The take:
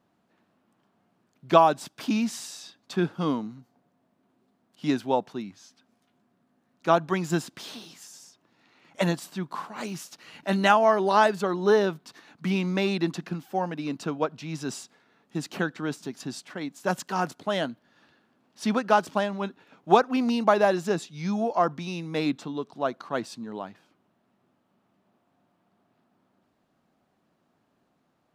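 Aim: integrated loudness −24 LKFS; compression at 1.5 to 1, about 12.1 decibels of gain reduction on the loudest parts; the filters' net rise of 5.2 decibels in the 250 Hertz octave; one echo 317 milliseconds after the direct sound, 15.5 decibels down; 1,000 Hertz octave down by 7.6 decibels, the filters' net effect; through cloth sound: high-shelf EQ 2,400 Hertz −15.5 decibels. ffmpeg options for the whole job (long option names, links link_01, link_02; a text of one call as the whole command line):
ffmpeg -i in.wav -af "equalizer=frequency=250:width_type=o:gain=7.5,equalizer=frequency=1000:width_type=o:gain=-8,acompressor=threshold=-49dB:ratio=1.5,highshelf=frequency=2400:gain=-15.5,aecho=1:1:317:0.168,volume=12.5dB" out.wav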